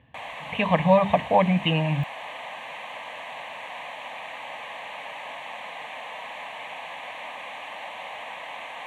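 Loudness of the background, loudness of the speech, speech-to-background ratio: -36.5 LUFS, -22.0 LUFS, 14.5 dB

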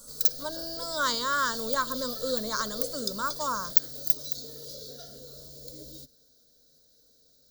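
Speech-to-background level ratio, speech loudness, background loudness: -1.0 dB, -31.0 LUFS, -30.0 LUFS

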